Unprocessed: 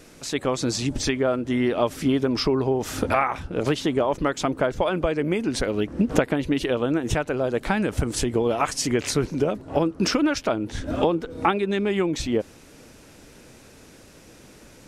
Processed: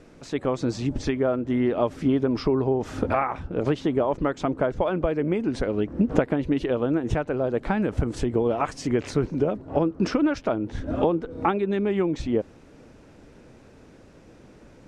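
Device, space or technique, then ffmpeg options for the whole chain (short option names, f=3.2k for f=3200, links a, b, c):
through cloth: -af "lowpass=8.4k,highshelf=f=2.2k:g=-13.5"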